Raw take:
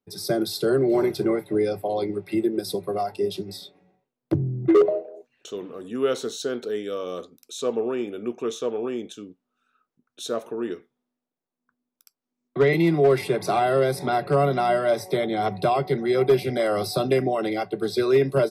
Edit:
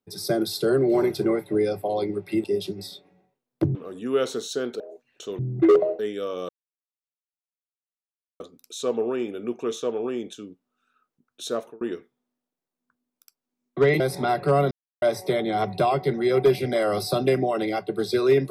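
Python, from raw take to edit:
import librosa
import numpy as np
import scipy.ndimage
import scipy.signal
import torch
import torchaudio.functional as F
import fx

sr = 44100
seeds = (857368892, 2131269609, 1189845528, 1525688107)

y = fx.edit(x, sr, fx.cut(start_s=2.44, length_s=0.7),
    fx.swap(start_s=4.45, length_s=0.6, other_s=5.64, other_length_s=1.05),
    fx.insert_silence(at_s=7.19, length_s=1.91),
    fx.fade_out_span(start_s=10.35, length_s=0.25),
    fx.cut(start_s=12.79, length_s=1.05),
    fx.silence(start_s=14.55, length_s=0.31), tone=tone)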